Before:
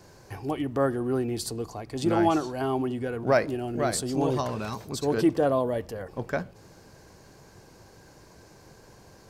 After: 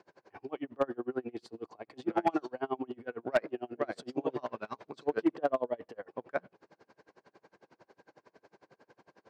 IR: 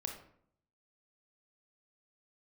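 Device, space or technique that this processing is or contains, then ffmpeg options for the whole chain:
helicopter radio: -af "highpass=300,lowpass=2.7k,aeval=exprs='val(0)*pow(10,-32*(0.5-0.5*cos(2*PI*11*n/s))/20)':c=same,asoftclip=type=hard:threshold=-18.5dB"

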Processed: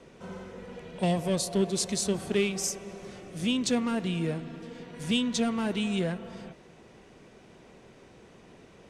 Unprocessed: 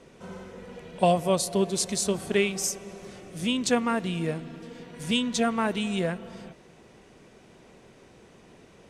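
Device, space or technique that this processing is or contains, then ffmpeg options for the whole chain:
one-band saturation: -filter_complex "[0:a]acrossover=split=420|2700[a][b][c];[b]asoftclip=type=tanh:threshold=-34dB[d];[a][d][c]amix=inputs=3:normalize=0,highshelf=f=9.3k:g=-7.5"

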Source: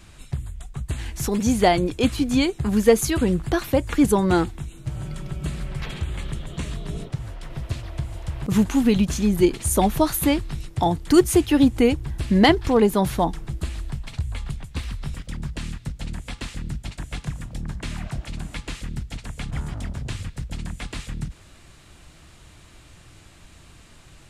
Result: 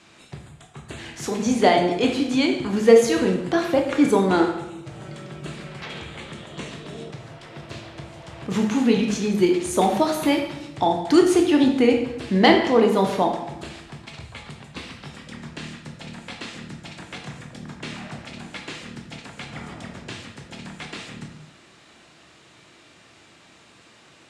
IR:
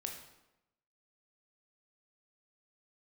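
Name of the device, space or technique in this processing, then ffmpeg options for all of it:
supermarket ceiling speaker: -filter_complex "[0:a]highpass=240,lowpass=6.4k[a];[1:a]atrim=start_sample=2205[b];[a][b]afir=irnorm=-1:irlink=0,volume=3.5dB"

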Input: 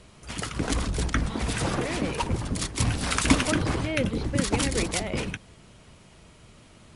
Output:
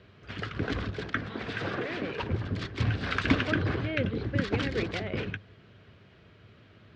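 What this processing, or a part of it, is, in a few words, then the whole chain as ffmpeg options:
guitar cabinet: -filter_complex "[0:a]asettb=1/sr,asplit=3[a][b][c];[a]atrim=end=0.904[d];[b]atrim=start=0.9:end=2.19,asetpts=PTS-STARTPTS,afade=t=in:d=0.004:c=qsin,afade=t=out:st=1.286:d=0.004:c=qsin,highpass=f=240:p=1[e];[c]atrim=start=2.186[f];[d][e]acrossfade=d=0.004:c1=hsin:c2=qsin[g];[g][f]acrossfade=d=0.004:c1=qsin:c2=hsin,highpass=76,equalizer=f=100:t=q:w=4:g=9,equalizer=f=410:t=q:w=4:g=5,equalizer=f=900:t=q:w=4:g=-6,equalizer=f=1.6k:t=q:w=4:g=7,lowpass=f=4k:w=0.5412,lowpass=f=4k:w=1.3066,volume=-4.5dB"

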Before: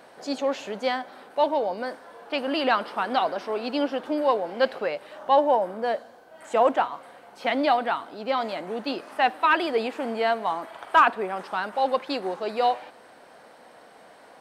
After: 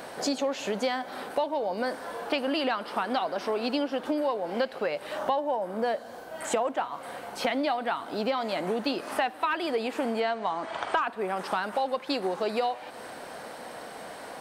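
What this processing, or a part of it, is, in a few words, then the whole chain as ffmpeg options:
ASMR close-microphone chain: -filter_complex "[0:a]asettb=1/sr,asplit=3[a][b][c];[a]atrim=end=10.204[d];[b]atrim=start=10.2:end=11.01,asetpts=PTS-STARTPTS,afade=t=in:d=0.004:c=qsin,afade=t=out:st=0.806:d=0.004:c=qsin,lowpass=f=7.5k:w=0.5412,lowpass=f=7.5k:w=1.3066[e];[c]atrim=start=11.006[f];[d][e]acrossfade=d=0.004:c1=hsin:c2=qsin[g];[g][f]acrossfade=d=0.004:c1=qsin:c2=hsin,lowshelf=f=150:g=5.5,acompressor=threshold=-34dB:ratio=8,highshelf=f=6k:g=6.5,volume=8.5dB"

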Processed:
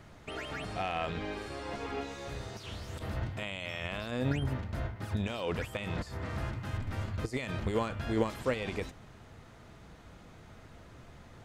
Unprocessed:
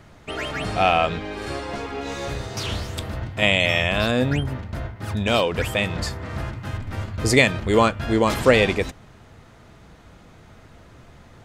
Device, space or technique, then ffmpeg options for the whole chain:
de-esser from a sidechain: -filter_complex "[0:a]asplit=2[a][b];[b]highpass=f=4.2k:w=0.5412,highpass=f=4.2k:w=1.3066,apad=whole_len=504811[c];[a][c]sidechaincompress=threshold=-50dB:ratio=4:attack=2:release=21,volume=-5dB"

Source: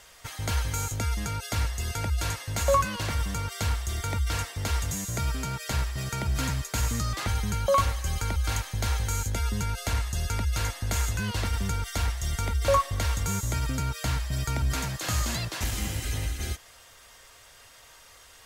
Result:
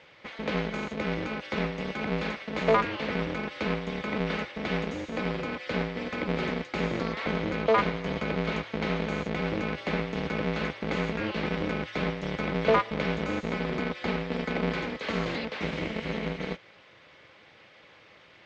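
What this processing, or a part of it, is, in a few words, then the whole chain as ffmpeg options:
ring modulator pedal into a guitar cabinet: -af "aeval=exprs='val(0)*sgn(sin(2*PI*110*n/s))':c=same,highpass=87,equalizer=f=310:t=q:w=4:g=5,equalizer=f=510:t=q:w=4:g=10,equalizer=f=2.2k:t=q:w=4:g=7,lowpass=f=3.9k:w=0.5412,lowpass=f=3.9k:w=1.3066,volume=-2.5dB"

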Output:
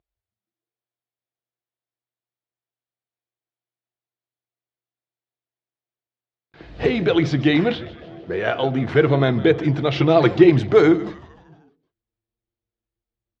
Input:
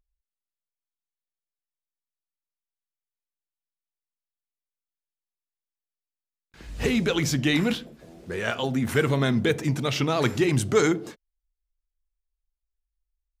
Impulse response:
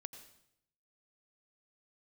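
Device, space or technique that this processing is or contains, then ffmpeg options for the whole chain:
frequency-shifting delay pedal into a guitar cabinet: -filter_complex "[0:a]asettb=1/sr,asplit=3[a][b][c];[a]atrim=end=9.924[d];[b]atrim=start=9.92:end=10.5,asetpts=PTS-STARTPTS,afade=t=in:d=0.004:c=qsin,afade=t=out:st=0.576:d=0.004:c=qsin,aecho=1:1:5.8:0.58,atrim=end_sample=25578[e];[c]atrim=start=10.496[f];[d][e]acrossfade=d=0.004:c1=hsin:c2=qsin[g];[g][f]acrossfade=d=0.004:c1=qsin:c2=hsin,asplit=6[h][i][j][k][l][m];[i]adelay=153,afreqshift=-120,volume=-17dB[n];[j]adelay=306,afreqshift=-240,volume=-22.4dB[o];[k]adelay=459,afreqshift=-360,volume=-27.7dB[p];[l]adelay=612,afreqshift=-480,volume=-33.1dB[q];[m]adelay=765,afreqshift=-600,volume=-38.4dB[r];[h][n][o][p][q][r]amix=inputs=6:normalize=0,highpass=79,equalizer=f=140:t=q:w=4:g=3,equalizer=f=230:t=q:w=4:g=-5,equalizer=f=330:t=q:w=4:g=7,equalizer=f=470:t=q:w=4:g=4,equalizer=f=690:t=q:w=4:g=8,equalizer=f=2.7k:t=q:w=4:g=-3,lowpass=f=4k:w=0.5412,lowpass=f=4k:w=1.3066,volume=3dB"

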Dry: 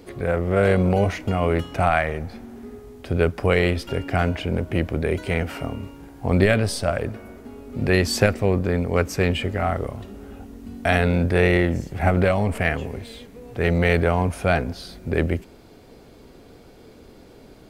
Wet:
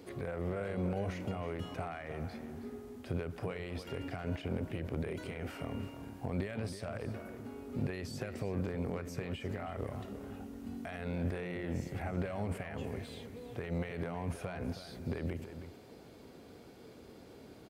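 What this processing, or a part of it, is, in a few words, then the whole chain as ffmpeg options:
de-esser from a sidechain: -filter_complex "[0:a]asplit=2[a][b];[b]highpass=f=4.2k:p=1,apad=whole_len=780194[c];[a][c]sidechaincompress=threshold=-45dB:ratio=4:attack=1.2:release=52,highpass=78,asplit=2[d][e];[e]adelay=320.7,volume=-10dB,highshelf=f=4k:g=-7.22[f];[d][f]amix=inputs=2:normalize=0,volume=-6.5dB"

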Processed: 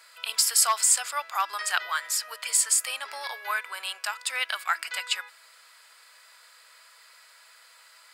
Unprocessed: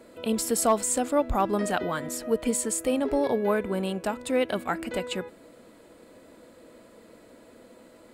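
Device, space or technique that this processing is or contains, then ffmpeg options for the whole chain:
headphones lying on a table: -af "highpass=f=1.2k:w=0.5412,highpass=f=1.2k:w=1.3066,equalizer=f=4.9k:t=o:w=0.23:g=10,volume=7dB"

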